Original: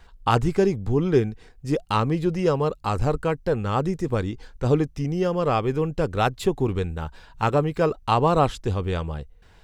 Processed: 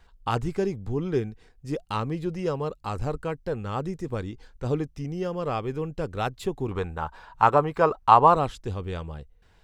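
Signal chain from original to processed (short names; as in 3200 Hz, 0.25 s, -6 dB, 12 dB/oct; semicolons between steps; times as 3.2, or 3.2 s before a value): 6.71–8.36 bell 1000 Hz +14.5 dB 1.6 oct; gain -6.5 dB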